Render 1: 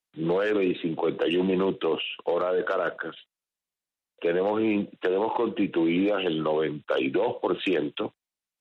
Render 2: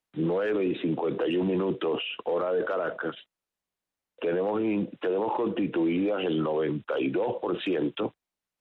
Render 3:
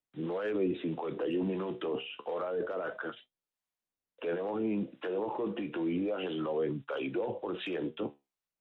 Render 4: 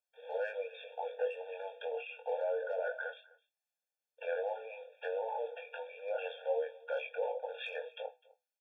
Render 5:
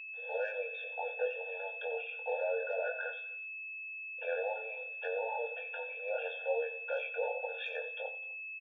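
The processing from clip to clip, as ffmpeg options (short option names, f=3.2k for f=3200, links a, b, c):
-filter_complex "[0:a]asplit=2[a][b];[b]acompressor=threshold=-32dB:ratio=6,volume=-2.5dB[c];[a][c]amix=inputs=2:normalize=0,alimiter=limit=-21dB:level=0:latency=1:release=21,highshelf=f=2.3k:g=-9,volume=1.5dB"
-filter_complex "[0:a]flanger=delay=6.9:depth=9.7:regen=67:speed=0.29:shape=triangular,acrossover=split=590[a][b];[a]aeval=exprs='val(0)*(1-0.5/2+0.5/2*cos(2*PI*1.5*n/s))':c=same[c];[b]aeval=exprs='val(0)*(1-0.5/2-0.5/2*cos(2*PI*1.5*n/s))':c=same[d];[c][d]amix=inputs=2:normalize=0"
-filter_complex "[0:a]asplit=2[a][b];[b]adelay=22,volume=-5.5dB[c];[a][c]amix=inputs=2:normalize=0,aecho=1:1:254:0.0708,afftfilt=real='re*eq(mod(floor(b*sr/1024/460),2),1)':imag='im*eq(mod(floor(b*sr/1024/460),2),1)':win_size=1024:overlap=0.75"
-af "aeval=exprs='val(0)+0.00708*sin(2*PI*2600*n/s)':c=same,aecho=1:1:90|180|270:0.188|0.0603|0.0193,aresample=16000,aresample=44100"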